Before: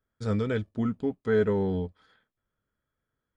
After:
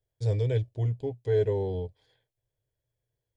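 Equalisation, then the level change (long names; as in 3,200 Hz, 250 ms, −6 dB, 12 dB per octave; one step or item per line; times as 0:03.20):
parametric band 120 Hz +13.5 dB 0.37 octaves
phaser with its sweep stopped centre 540 Hz, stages 4
0.0 dB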